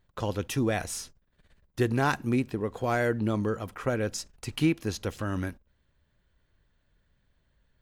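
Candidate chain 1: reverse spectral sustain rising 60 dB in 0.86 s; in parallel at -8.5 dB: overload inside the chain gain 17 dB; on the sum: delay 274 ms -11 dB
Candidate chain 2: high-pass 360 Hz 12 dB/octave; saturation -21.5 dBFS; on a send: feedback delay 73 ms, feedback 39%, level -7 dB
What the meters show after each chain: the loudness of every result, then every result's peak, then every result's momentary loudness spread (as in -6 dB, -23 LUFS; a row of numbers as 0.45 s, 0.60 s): -24.5 LUFS, -33.5 LUFS; -9.0 dBFS, -19.0 dBFS; 12 LU, 9 LU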